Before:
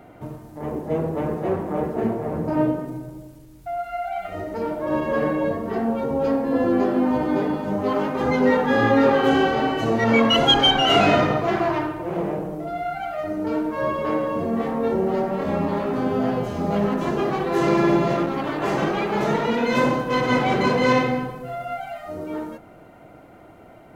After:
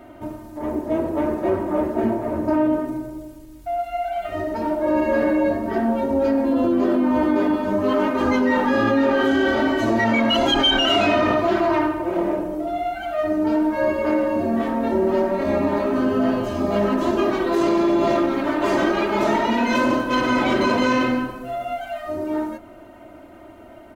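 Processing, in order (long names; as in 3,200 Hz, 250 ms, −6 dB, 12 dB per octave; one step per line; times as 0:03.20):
comb filter 3.2 ms, depth 82%
in parallel at +2 dB: compressor whose output falls as the input rises −19 dBFS
on the sum: level −7 dB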